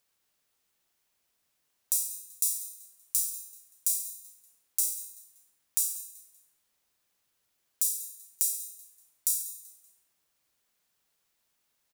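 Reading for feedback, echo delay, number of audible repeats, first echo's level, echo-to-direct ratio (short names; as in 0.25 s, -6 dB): 35%, 0.191 s, 2, -17.0 dB, -16.5 dB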